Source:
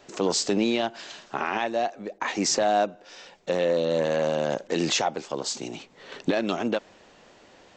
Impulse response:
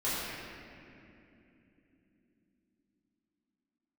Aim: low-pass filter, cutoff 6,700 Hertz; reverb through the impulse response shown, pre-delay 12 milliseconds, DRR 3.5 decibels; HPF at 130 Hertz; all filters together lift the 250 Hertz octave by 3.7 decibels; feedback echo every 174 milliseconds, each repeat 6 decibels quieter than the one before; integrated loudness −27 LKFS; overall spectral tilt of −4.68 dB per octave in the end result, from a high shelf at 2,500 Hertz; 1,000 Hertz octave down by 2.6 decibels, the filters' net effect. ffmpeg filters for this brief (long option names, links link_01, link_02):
-filter_complex "[0:a]highpass=130,lowpass=6700,equalizer=frequency=250:width_type=o:gain=5.5,equalizer=frequency=1000:width_type=o:gain=-4,highshelf=frequency=2500:gain=-5,aecho=1:1:174|348|522|696|870|1044:0.501|0.251|0.125|0.0626|0.0313|0.0157,asplit=2[link_01][link_02];[1:a]atrim=start_sample=2205,adelay=12[link_03];[link_02][link_03]afir=irnorm=-1:irlink=0,volume=-12.5dB[link_04];[link_01][link_04]amix=inputs=2:normalize=0,volume=-3dB"